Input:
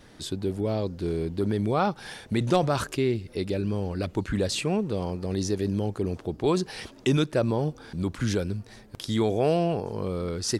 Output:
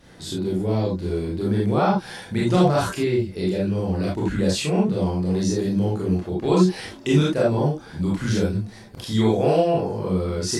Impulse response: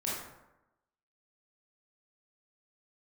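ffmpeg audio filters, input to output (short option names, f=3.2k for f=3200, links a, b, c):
-filter_complex "[1:a]atrim=start_sample=2205,atrim=end_sample=3528,asetrate=38808,aresample=44100[a];[0:a][a]afir=irnorm=-1:irlink=0"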